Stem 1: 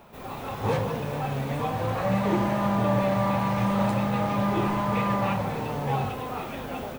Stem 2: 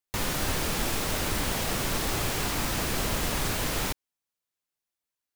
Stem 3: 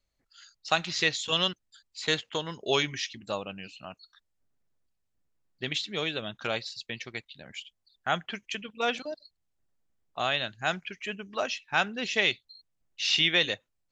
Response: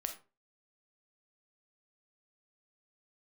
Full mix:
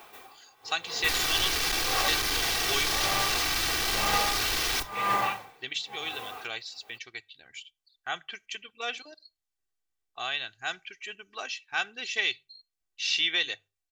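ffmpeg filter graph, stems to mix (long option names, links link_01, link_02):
-filter_complex "[0:a]lowshelf=frequency=180:gain=-11.5,aeval=exprs='val(0)*pow(10,-30*(0.5-0.5*cos(2*PI*0.97*n/s))/20)':channel_layout=same,volume=2dB[link_01];[1:a]afwtdn=0.0126,highshelf=frequency=6300:gain=11,asoftclip=type=hard:threshold=-29dB,adelay=900,volume=-2.5dB,asplit=2[link_02][link_03];[link_03]volume=-5dB[link_04];[2:a]volume=-8.5dB,asplit=3[link_05][link_06][link_07];[link_06]volume=-21.5dB[link_08];[link_07]apad=whole_len=307979[link_09];[link_01][link_09]sidechaincompress=threshold=-47dB:ratio=3:attack=16:release=268[link_10];[3:a]atrim=start_sample=2205[link_11];[link_04][link_08]amix=inputs=2:normalize=0[link_12];[link_12][link_11]afir=irnorm=-1:irlink=0[link_13];[link_10][link_02][link_05][link_13]amix=inputs=4:normalize=0,tiltshelf=frequency=970:gain=-6.5,bandreject=frequency=50:width_type=h:width=6,bandreject=frequency=100:width_type=h:width=6,bandreject=frequency=150:width_type=h:width=6,aecho=1:1:2.6:0.55"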